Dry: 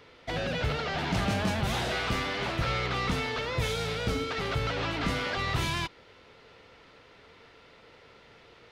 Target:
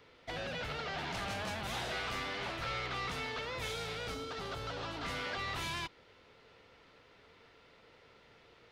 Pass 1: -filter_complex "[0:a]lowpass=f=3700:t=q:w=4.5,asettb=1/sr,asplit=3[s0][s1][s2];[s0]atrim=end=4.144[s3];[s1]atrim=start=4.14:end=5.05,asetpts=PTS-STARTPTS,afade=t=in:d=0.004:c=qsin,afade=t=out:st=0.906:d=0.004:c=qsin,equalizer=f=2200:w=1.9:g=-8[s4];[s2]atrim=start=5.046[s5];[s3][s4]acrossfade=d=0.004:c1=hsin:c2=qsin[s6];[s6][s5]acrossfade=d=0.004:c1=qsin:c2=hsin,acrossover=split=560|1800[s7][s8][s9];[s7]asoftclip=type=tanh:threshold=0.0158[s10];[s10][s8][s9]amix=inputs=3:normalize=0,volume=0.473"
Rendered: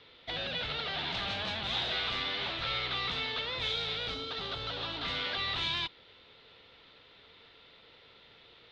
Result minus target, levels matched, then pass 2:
4 kHz band +4.5 dB
-filter_complex "[0:a]asettb=1/sr,asplit=3[s0][s1][s2];[s0]atrim=end=4.144[s3];[s1]atrim=start=4.14:end=5.05,asetpts=PTS-STARTPTS,afade=t=in:d=0.004:c=qsin,afade=t=out:st=0.906:d=0.004:c=qsin,equalizer=f=2200:w=1.9:g=-8[s4];[s2]atrim=start=5.046[s5];[s3][s4]acrossfade=d=0.004:c1=hsin:c2=qsin[s6];[s6][s5]acrossfade=d=0.004:c1=qsin:c2=hsin,acrossover=split=560|1800[s7][s8][s9];[s7]asoftclip=type=tanh:threshold=0.0158[s10];[s10][s8][s9]amix=inputs=3:normalize=0,volume=0.473"

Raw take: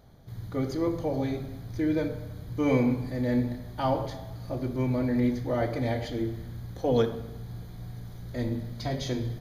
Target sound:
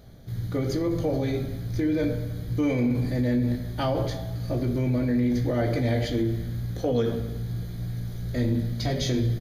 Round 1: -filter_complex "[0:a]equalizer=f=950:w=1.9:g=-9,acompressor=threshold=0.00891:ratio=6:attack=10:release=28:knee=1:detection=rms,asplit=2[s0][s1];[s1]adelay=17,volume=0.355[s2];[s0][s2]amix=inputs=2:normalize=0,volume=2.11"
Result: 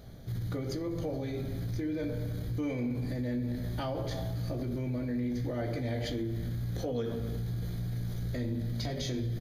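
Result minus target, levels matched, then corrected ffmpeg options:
compression: peak gain reduction +9 dB
-filter_complex "[0:a]equalizer=f=950:w=1.9:g=-9,acompressor=threshold=0.0316:ratio=6:attack=10:release=28:knee=1:detection=rms,asplit=2[s0][s1];[s1]adelay=17,volume=0.355[s2];[s0][s2]amix=inputs=2:normalize=0,volume=2.11"

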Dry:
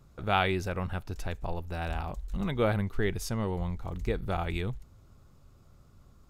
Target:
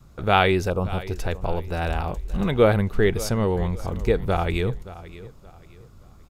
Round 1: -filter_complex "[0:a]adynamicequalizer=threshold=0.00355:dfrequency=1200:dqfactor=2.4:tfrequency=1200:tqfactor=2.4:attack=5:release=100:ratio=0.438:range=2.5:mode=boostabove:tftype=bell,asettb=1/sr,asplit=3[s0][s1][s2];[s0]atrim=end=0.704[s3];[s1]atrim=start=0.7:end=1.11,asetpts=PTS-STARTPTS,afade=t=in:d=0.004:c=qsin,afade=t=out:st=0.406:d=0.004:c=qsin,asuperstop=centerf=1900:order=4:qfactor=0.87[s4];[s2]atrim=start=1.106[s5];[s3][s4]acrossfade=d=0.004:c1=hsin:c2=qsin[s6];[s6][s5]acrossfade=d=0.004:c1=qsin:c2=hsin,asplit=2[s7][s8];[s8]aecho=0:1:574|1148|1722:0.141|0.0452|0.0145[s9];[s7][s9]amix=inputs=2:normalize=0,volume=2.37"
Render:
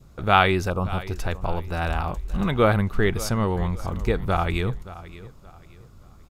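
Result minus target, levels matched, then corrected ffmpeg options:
500 Hz band -2.5 dB
-filter_complex "[0:a]adynamicequalizer=threshold=0.00355:dfrequency=460:dqfactor=2.4:tfrequency=460:tqfactor=2.4:attack=5:release=100:ratio=0.438:range=2.5:mode=boostabove:tftype=bell,asettb=1/sr,asplit=3[s0][s1][s2];[s0]atrim=end=0.704[s3];[s1]atrim=start=0.7:end=1.11,asetpts=PTS-STARTPTS,afade=t=in:d=0.004:c=qsin,afade=t=out:st=0.406:d=0.004:c=qsin,asuperstop=centerf=1900:order=4:qfactor=0.87[s4];[s2]atrim=start=1.106[s5];[s3][s4]acrossfade=d=0.004:c1=hsin:c2=qsin[s6];[s6][s5]acrossfade=d=0.004:c1=qsin:c2=hsin,asplit=2[s7][s8];[s8]aecho=0:1:574|1148|1722:0.141|0.0452|0.0145[s9];[s7][s9]amix=inputs=2:normalize=0,volume=2.37"

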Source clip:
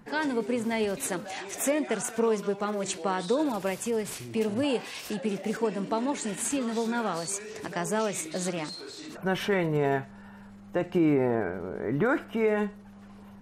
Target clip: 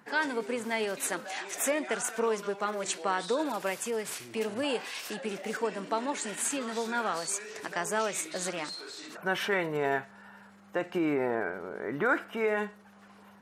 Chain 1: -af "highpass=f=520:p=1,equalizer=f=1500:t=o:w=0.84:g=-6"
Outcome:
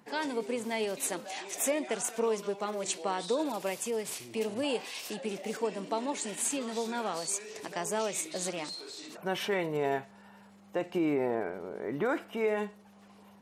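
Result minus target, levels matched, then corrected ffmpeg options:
2 kHz band -5.5 dB
-af "highpass=f=520:p=1,equalizer=f=1500:t=o:w=0.84:g=3.5"

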